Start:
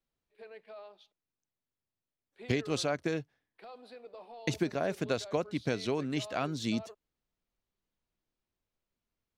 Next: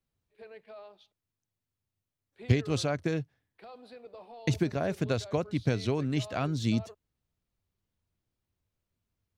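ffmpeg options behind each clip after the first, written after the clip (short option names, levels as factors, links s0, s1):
-af "equalizer=f=94:w=0.95:g=14"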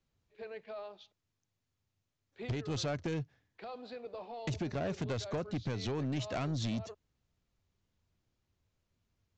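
-af "acompressor=threshold=0.0251:ratio=4,aresample=16000,asoftclip=type=tanh:threshold=0.02,aresample=44100,volume=1.58"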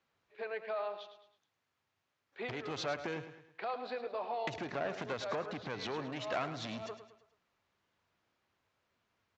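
-af "acompressor=threshold=0.0112:ratio=6,bandpass=f=1300:t=q:w=0.73:csg=0,aecho=1:1:107|214|321|428:0.282|0.121|0.0521|0.0224,volume=3.35"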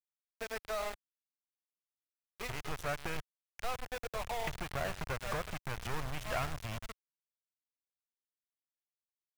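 -af "asuperstop=centerf=4300:order=12:qfactor=2.3,aeval=exprs='val(0)*gte(abs(val(0)),0.0141)':c=same,asubboost=boost=11:cutoff=85,volume=1.12"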